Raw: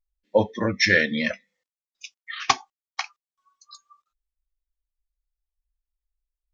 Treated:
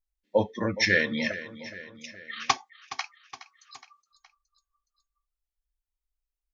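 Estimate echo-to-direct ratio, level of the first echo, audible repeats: -13.5 dB, -15.0 dB, 3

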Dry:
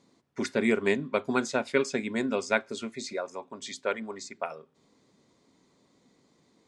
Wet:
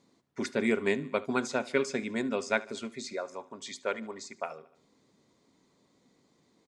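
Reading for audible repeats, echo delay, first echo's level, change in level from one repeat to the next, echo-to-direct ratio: 3, 74 ms, -20.0 dB, -5.0 dB, -18.5 dB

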